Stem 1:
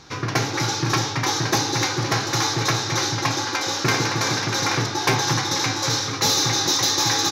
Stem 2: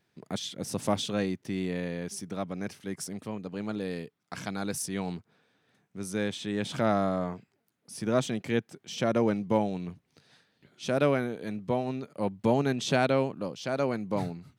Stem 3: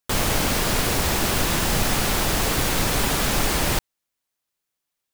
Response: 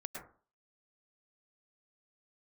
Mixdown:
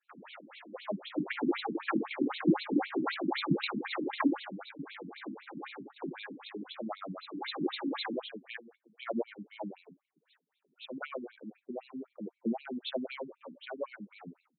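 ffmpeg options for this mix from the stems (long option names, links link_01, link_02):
-filter_complex "[0:a]afwtdn=0.0398,equalizer=frequency=230:width_type=o:width=1.8:gain=13,adelay=950,volume=9.5dB,afade=type=out:start_time=4.21:duration=0.35:silence=0.223872,afade=type=in:start_time=7.31:duration=0.23:silence=0.316228[link_01];[1:a]aemphasis=mode=production:type=cd,volume=-1.5dB,asplit=3[link_02][link_03][link_04];[link_03]volume=-20.5dB[link_05];[2:a]volume=-15.5dB[link_06];[link_04]apad=whole_len=364279[link_07];[link_01][link_07]sidechaincompress=threshold=-30dB:ratio=8:attack=7.8:release=262[link_08];[3:a]atrim=start_sample=2205[link_09];[link_05][link_09]afir=irnorm=-1:irlink=0[link_10];[link_08][link_02][link_06][link_10]amix=inputs=4:normalize=0,flanger=delay=0.7:depth=8.2:regen=35:speed=0.28:shape=sinusoidal,afftfilt=real='re*between(b*sr/1024,230*pow(3100/230,0.5+0.5*sin(2*PI*3.9*pts/sr))/1.41,230*pow(3100/230,0.5+0.5*sin(2*PI*3.9*pts/sr))*1.41)':imag='im*between(b*sr/1024,230*pow(3100/230,0.5+0.5*sin(2*PI*3.9*pts/sr))/1.41,230*pow(3100/230,0.5+0.5*sin(2*PI*3.9*pts/sr))*1.41)':win_size=1024:overlap=0.75"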